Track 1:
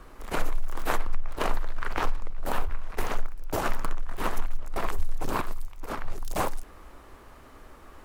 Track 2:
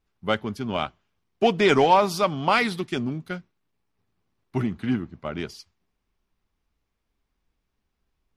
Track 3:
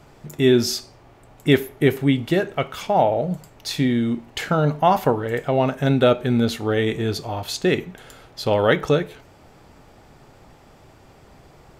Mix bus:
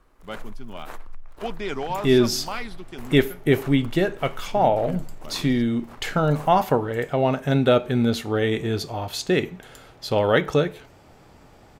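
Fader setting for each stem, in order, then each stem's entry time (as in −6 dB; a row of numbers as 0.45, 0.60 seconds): −12.0, −11.5, −1.5 decibels; 0.00, 0.00, 1.65 seconds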